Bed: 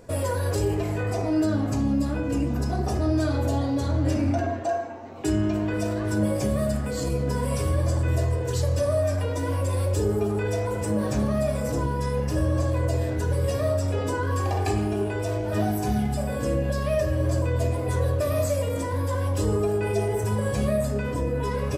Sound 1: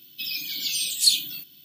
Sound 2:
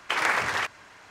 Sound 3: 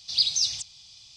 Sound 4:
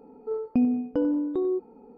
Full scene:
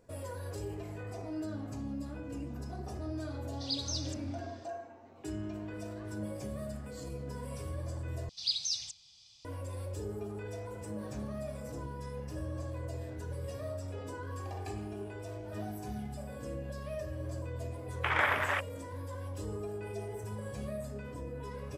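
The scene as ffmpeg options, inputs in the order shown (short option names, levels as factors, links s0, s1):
-filter_complex "[3:a]asplit=2[s0][s1];[0:a]volume=0.168[s2];[2:a]afwtdn=0.0355[s3];[s2]asplit=2[s4][s5];[s4]atrim=end=8.294[s6];[s1]atrim=end=1.16,asetpts=PTS-STARTPTS,volume=0.335[s7];[s5]atrim=start=9.446[s8];[s0]atrim=end=1.16,asetpts=PTS-STARTPTS,volume=0.211,afade=t=in:d=0.004:c=hsin,afade=t=out:st=1.156:d=0.004:c=hsin,adelay=3520[s9];[s3]atrim=end=1.1,asetpts=PTS-STARTPTS,volume=0.631,afade=t=in:d=0.004:c=hsin,afade=t=out:st=1.096:d=0.004:c=hsin,adelay=17940[s10];[s6][s7]acrossfade=d=0.004:c1=hsin:c2=hsin[s11];[s11][s8]acrossfade=d=0.004:c1=hsin:c2=hsin[s12];[s12][s9][s10]amix=inputs=3:normalize=0"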